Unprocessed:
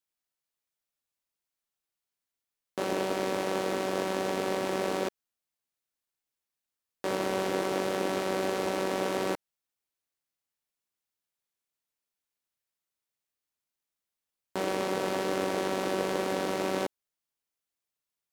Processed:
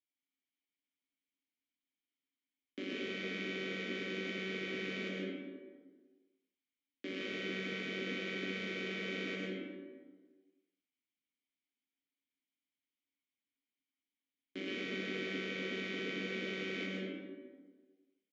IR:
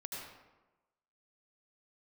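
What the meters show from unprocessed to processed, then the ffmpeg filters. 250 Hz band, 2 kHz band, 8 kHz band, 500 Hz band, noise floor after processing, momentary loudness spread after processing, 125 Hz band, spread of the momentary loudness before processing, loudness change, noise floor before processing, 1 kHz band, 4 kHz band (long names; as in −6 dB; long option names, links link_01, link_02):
−7.0 dB, −2.0 dB, −18.0 dB, −12.5 dB, below −85 dBFS, 12 LU, −6.0 dB, 4 LU, −9.0 dB, below −85 dBFS, −21.5 dB, −3.5 dB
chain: -filter_complex "[0:a]asplit=3[link_01][link_02][link_03];[link_01]bandpass=frequency=270:width_type=q:width=8,volume=0dB[link_04];[link_02]bandpass=frequency=2290:width_type=q:width=8,volume=-6dB[link_05];[link_03]bandpass=frequency=3010:width_type=q:width=8,volume=-9dB[link_06];[link_04][link_05][link_06]amix=inputs=3:normalize=0,acrossover=split=250|1800[link_07][link_08][link_09];[link_07]alimiter=level_in=26dB:limit=-24dB:level=0:latency=1:release=91,volume=-26dB[link_10];[link_10][link_08][link_09]amix=inputs=3:normalize=0,aresample=16000,aresample=44100[link_11];[1:a]atrim=start_sample=2205,asetrate=31311,aresample=44100[link_12];[link_11][link_12]afir=irnorm=-1:irlink=0,afftfilt=real='re*lt(hypot(re,im),0.0398)':imag='im*lt(hypot(re,im),0.0398)':win_size=1024:overlap=0.75,volume=9.5dB"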